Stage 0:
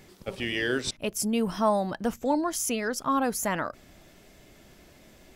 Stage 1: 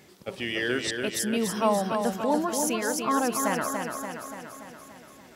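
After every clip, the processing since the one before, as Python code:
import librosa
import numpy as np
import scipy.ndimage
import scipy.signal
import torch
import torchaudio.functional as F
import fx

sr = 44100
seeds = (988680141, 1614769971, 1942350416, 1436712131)

y = scipy.signal.sosfilt(scipy.signal.butter(2, 79.0, 'highpass', fs=sr, output='sos'), x)
y = fx.low_shelf(y, sr, hz=140.0, db=-4.5)
y = fx.echo_feedback(y, sr, ms=288, feedback_pct=60, wet_db=-5.0)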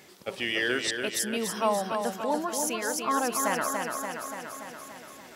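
y = fx.low_shelf(x, sr, hz=290.0, db=-9.5)
y = fx.rider(y, sr, range_db=5, speed_s=2.0)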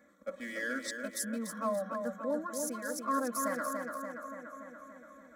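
y = fx.wiener(x, sr, points=9)
y = fx.fixed_phaser(y, sr, hz=560.0, stages=8)
y = y + 0.77 * np.pad(y, (int(3.6 * sr / 1000.0), 0))[:len(y)]
y = F.gain(torch.from_numpy(y), -6.5).numpy()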